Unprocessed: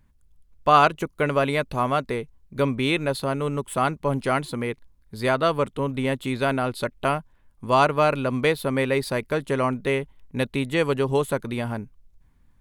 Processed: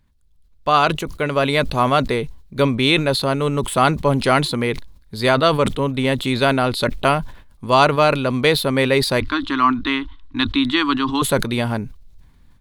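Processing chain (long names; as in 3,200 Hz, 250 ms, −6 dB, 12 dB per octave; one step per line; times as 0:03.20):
0:09.20–0:11.22: drawn EQ curve 100 Hz 0 dB, 150 Hz −25 dB, 300 Hz +6 dB, 480 Hz −29 dB, 1,100 Hz +6 dB, 2,300 Hz −5 dB, 3,600 Hz +2 dB, 12,000 Hz −25 dB
automatic gain control gain up to 10 dB
parametric band 4,000 Hz +7.5 dB 0.76 octaves
level that may fall only so fast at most 98 dB per second
level −1.5 dB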